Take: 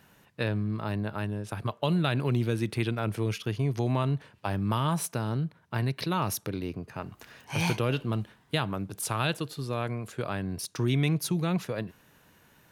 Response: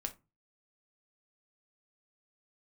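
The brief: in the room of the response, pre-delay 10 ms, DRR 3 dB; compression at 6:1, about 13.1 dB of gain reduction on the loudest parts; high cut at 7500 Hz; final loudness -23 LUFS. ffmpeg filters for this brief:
-filter_complex "[0:a]lowpass=7.5k,acompressor=threshold=-37dB:ratio=6,asplit=2[a][b];[1:a]atrim=start_sample=2205,adelay=10[c];[b][c]afir=irnorm=-1:irlink=0,volume=-2dB[d];[a][d]amix=inputs=2:normalize=0,volume=16dB"

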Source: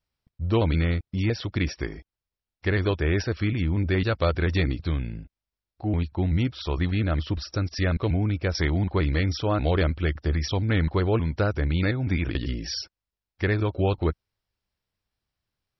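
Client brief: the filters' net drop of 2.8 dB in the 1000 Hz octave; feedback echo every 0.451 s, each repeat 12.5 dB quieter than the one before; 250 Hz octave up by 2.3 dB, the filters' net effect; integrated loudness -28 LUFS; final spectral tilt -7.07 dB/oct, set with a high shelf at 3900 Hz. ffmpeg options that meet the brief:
-af "equalizer=f=250:t=o:g=3.5,equalizer=f=1k:t=o:g=-3.5,highshelf=f=3.9k:g=-6.5,aecho=1:1:451|902|1353:0.237|0.0569|0.0137,volume=-3dB"

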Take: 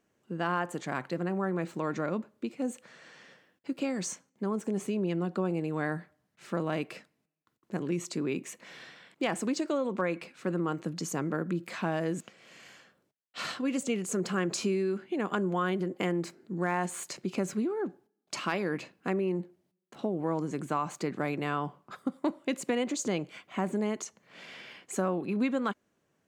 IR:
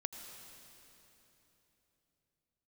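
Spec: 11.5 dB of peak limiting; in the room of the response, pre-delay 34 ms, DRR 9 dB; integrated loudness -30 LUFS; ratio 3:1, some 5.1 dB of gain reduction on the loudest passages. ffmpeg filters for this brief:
-filter_complex "[0:a]acompressor=threshold=-32dB:ratio=3,alimiter=level_in=8dB:limit=-24dB:level=0:latency=1,volume=-8dB,asplit=2[a][b];[1:a]atrim=start_sample=2205,adelay=34[c];[b][c]afir=irnorm=-1:irlink=0,volume=-8dB[d];[a][d]amix=inputs=2:normalize=0,volume=11.5dB"

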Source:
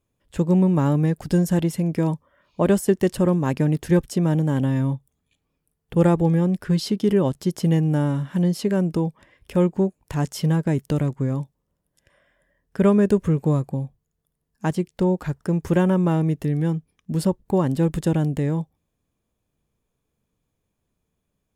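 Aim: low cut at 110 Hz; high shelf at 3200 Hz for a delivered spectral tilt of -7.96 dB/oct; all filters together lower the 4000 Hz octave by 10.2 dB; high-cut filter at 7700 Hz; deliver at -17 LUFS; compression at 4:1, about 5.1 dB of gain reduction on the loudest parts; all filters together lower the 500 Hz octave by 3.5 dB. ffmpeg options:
-af "highpass=110,lowpass=7.7k,equalizer=f=500:t=o:g=-4.5,highshelf=f=3.2k:g=-7,equalizer=f=4k:t=o:g=-8,acompressor=threshold=-21dB:ratio=4,volume=10dB"

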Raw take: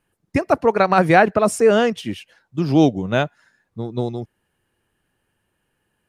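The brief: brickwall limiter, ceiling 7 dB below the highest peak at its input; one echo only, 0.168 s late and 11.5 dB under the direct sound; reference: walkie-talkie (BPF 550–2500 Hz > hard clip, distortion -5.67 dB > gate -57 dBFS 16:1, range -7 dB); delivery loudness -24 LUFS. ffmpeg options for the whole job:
-af "alimiter=limit=-8dB:level=0:latency=1,highpass=550,lowpass=2.5k,aecho=1:1:168:0.266,asoftclip=type=hard:threshold=-24dB,agate=range=-7dB:threshold=-57dB:ratio=16,volume=6dB"

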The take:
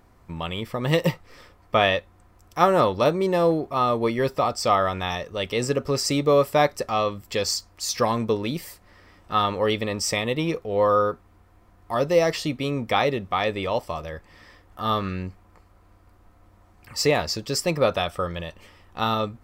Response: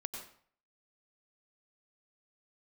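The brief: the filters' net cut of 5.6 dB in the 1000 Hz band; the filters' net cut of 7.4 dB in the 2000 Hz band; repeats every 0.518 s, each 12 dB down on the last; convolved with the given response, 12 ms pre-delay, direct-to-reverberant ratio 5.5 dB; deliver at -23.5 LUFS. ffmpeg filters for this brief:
-filter_complex "[0:a]equalizer=f=1k:t=o:g=-5.5,equalizer=f=2k:t=o:g=-8,aecho=1:1:518|1036|1554:0.251|0.0628|0.0157,asplit=2[a][b];[1:a]atrim=start_sample=2205,adelay=12[c];[b][c]afir=irnorm=-1:irlink=0,volume=-4.5dB[d];[a][d]amix=inputs=2:normalize=0,volume=1dB"

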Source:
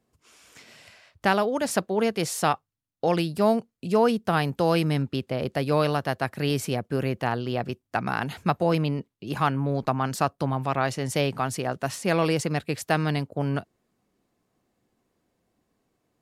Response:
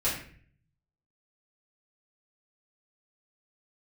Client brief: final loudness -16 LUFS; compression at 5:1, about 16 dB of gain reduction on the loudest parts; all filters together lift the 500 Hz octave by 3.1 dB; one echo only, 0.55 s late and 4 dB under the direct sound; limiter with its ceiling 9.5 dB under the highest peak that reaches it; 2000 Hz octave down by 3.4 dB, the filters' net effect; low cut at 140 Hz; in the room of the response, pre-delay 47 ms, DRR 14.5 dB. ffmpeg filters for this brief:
-filter_complex "[0:a]highpass=140,equalizer=f=500:t=o:g=4,equalizer=f=2k:t=o:g=-5,acompressor=threshold=-32dB:ratio=5,alimiter=level_in=2.5dB:limit=-24dB:level=0:latency=1,volume=-2.5dB,aecho=1:1:550:0.631,asplit=2[a][b];[1:a]atrim=start_sample=2205,adelay=47[c];[b][c]afir=irnorm=-1:irlink=0,volume=-23.5dB[d];[a][d]amix=inputs=2:normalize=0,volume=21dB"

